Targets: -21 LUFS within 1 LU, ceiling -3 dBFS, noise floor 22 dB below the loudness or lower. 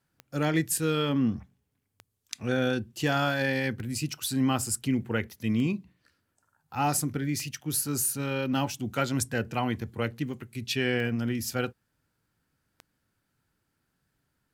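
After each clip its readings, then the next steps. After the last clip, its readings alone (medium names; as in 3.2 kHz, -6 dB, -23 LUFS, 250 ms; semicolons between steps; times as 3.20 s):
clicks found 8; loudness -29.0 LUFS; peak level -11.5 dBFS; loudness target -21.0 LUFS
-> de-click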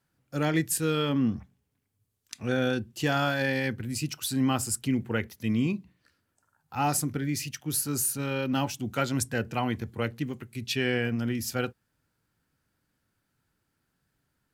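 clicks found 0; loudness -29.0 LUFS; peak level -11.5 dBFS; loudness target -21.0 LUFS
-> trim +8 dB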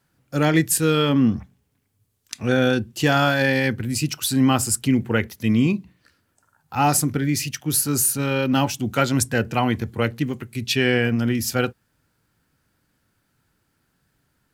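loudness -21.0 LUFS; peak level -3.5 dBFS; noise floor -70 dBFS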